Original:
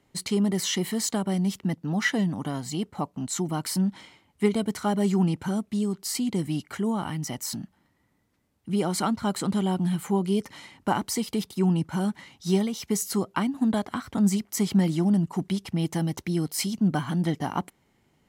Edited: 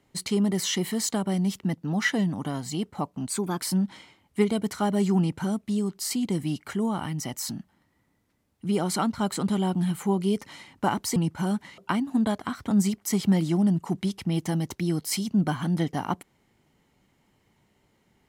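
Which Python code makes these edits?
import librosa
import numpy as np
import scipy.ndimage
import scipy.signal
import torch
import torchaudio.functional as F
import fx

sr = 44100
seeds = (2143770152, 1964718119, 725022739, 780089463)

y = fx.edit(x, sr, fx.speed_span(start_s=3.29, length_s=0.35, speed=1.13),
    fx.cut(start_s=11.2, length_s=0.5),
    fx.cut(start_s=12.32, length_s=0.93), tone=tone)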